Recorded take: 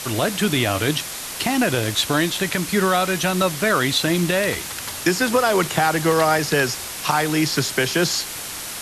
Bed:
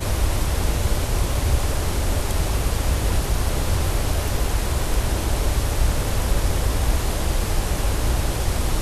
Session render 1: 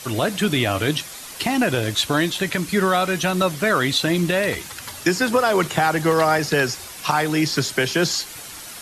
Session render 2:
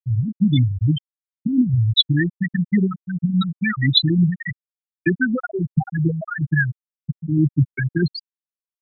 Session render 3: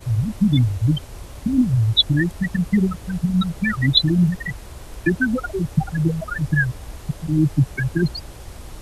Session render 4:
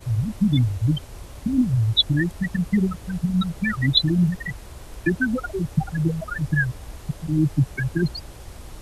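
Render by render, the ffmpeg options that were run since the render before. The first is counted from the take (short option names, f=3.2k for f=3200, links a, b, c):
-af "afftdn=nr=8:nf=-32"
-af "equalizer=f=125:t=o:w=1:g=11,equalizer=f=250:t=o:w=1:g=4,equalizer=f=500:t=o:w=1:g=-6,equalizer=f=1k:t=o:w=1:g=-4,equalizer=f=2k:t=o:w=1:g=6,equalizer=f=4k:t=o:w=1:g=7,equalizer=f=8k:t=o:w=1:g=4,afftfilt=real='re*gte(hypot(re,im),1)':imag='im*gte(hypot(re,im),1)':win_size=1024:overlap=0.75"
-filter_complex "[1:a]volume=-15dB[a];[0:a][a]amix=inputs=2:normalize=0"
-af "volume=-2.5dB"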